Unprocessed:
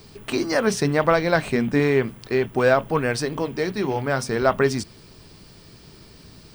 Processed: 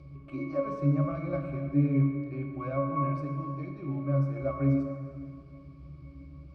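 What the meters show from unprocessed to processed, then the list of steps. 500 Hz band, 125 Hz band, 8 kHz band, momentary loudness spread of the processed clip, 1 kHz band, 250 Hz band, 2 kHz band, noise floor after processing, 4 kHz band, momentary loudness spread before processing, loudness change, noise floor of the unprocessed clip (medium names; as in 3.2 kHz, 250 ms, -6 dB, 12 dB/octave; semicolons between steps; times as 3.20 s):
-14.0 dB, 0.0 dB, under -35 dB, 20 LU, -11.0 dB, -5.0 dB, -22.0 dB, -49 dBFS, under -30 dB, 7 LU, -8.5 dB, -48 dBFS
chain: upward compressor, threshold -31 dBFS; pitch-class resonator C#, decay 0.32 s; plate-style reverb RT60 2.1 s, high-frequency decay 0.9×, DRR 2.5 dB; trim +3 dB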